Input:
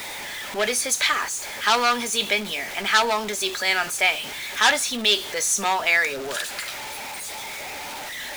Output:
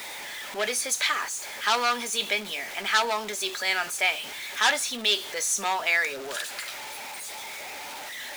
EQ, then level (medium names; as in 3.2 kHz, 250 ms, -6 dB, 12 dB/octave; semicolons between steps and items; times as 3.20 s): bass shelf 180 Hz -10 dB; -4.0 dB